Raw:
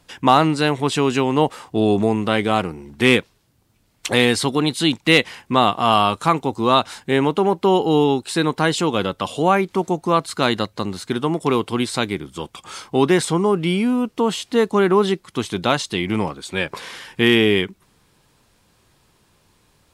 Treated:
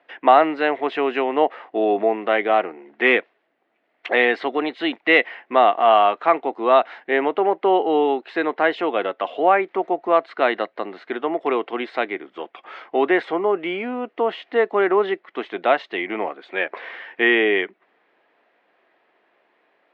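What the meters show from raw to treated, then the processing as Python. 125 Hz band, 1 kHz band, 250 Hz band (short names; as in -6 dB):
under -20 dB, +0.5 dB, -7.0 dB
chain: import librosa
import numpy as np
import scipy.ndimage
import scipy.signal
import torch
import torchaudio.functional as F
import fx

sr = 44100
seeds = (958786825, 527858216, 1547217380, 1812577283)

y = fx.cabinet(x, sr, low_hz=320.0, low_slope=24, high_hz=2700.0, hz=(680.0, 980.0, 1900.0), db=(9, -3, 7))
y = F.gain(torch.from_numpy(y), -1.5).numpy()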